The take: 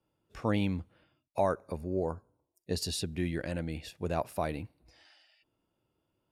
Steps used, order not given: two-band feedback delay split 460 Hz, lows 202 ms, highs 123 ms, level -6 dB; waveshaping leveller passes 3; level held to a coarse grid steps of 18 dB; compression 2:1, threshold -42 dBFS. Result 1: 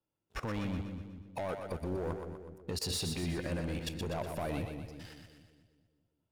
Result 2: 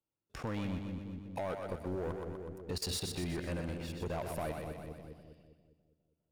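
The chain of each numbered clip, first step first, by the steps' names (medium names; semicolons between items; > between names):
compression > waveshaping leveller > level held to a coarse grid > two-band feedback delay; level held to a coarse grid > waveshaping leveller > two-band feedback delay > compression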